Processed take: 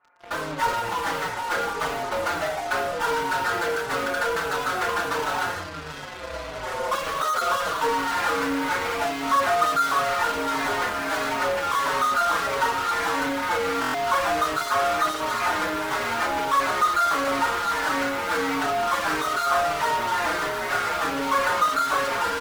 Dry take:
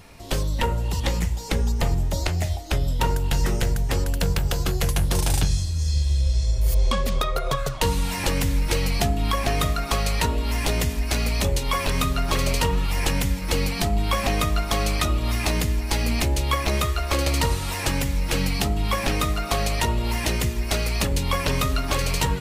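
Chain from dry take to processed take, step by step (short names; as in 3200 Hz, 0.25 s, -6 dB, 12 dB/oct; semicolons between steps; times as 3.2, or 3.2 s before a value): ladder low-pass 1600 Hz, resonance 60%; AGC gain up to 10 dB; HPF 640 Hz 12 dB/oct; on a send: echo 0.148 s -23 dB; on the sum: FDN reverb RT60 0.39 s, low-frequency decay 1×, high-frequency decay 0.75×, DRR -1.5 dB; in parallel at -7 dB: fuzz box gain 46 dB, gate -47 dBFS; on the sum: stuck buffer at 13.8, samples 1024, times 5; endless flanger 4.9 ms -1.5 Hz; gain -4 dB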